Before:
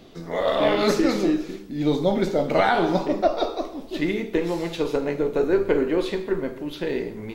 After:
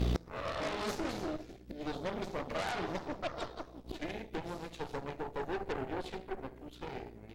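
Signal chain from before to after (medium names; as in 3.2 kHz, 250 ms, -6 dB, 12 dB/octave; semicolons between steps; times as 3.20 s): hum 60 Hz, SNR 16 dB; Chebyshev shaper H 8 -11 dB, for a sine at -7 dBFS; inverted gate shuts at -24 dBFS, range -28 dB; trim +9 dB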